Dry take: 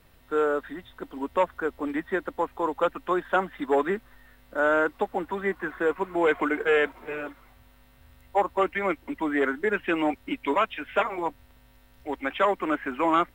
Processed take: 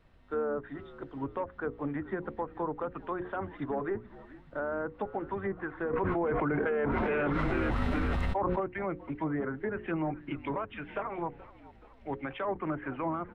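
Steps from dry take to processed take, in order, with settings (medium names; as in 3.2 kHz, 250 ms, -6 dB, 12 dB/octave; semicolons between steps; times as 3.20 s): octave divider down 1 oct, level -5 dB; peak limiter -19 dBFS, peak gain reduction 9 dB; hum notches 60/120/180/240/300/360/420/480/540 Hz; frequency-shifting echo 427 ms, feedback 53%, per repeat -66 Hz, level -19 dB; low-pass that closes with the level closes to 1.4 kHz, closed at -24.5 dBFS; tape spacing loss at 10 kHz 21 dB; 5.93–8.60 s: level flattener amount 100%; trim -3 dB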